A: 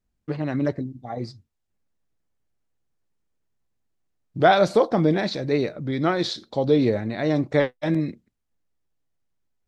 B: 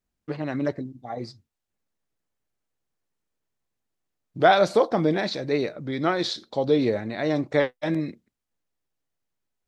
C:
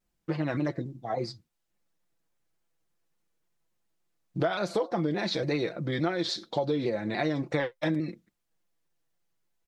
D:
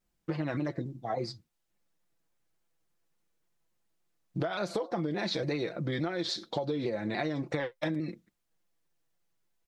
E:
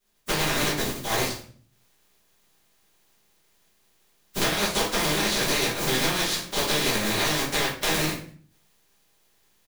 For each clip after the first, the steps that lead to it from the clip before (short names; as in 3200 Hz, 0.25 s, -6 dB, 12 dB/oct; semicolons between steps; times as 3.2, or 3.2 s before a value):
low shelf 210 Hz -8 dB
comb 5.9 ms, depth 58%; compressor 10:1, threshold -26 dBFS, peak gain reduction 17 dB; shaped vibrato saw down 3.5 Hz, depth 100 cents; gain +1.5 dB
compressor, threshold -28 dBFS, peak gain reduction 7 dB
spectral contrast lowered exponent 0.25; feedback echo 99 ms, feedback 33%, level -21.5 dB; shoebox room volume 39 m³, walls mixed, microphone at 1.3 m